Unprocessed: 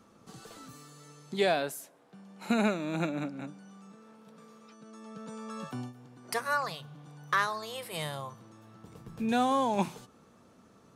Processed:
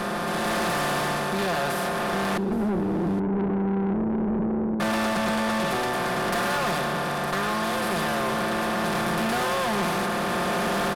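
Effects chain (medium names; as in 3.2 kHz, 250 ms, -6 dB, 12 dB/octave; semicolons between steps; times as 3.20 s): spectral levelling over time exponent 0.2; 2.37–4.80 s: Chebyshev band-pass 170–470 Hz, order 5; comb 5.7 ms, depth 91%; level rider gain up to 12 dB; valve stage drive 19 dB, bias 0.4; delay 820 ms -18 dB; trim -3.5 dB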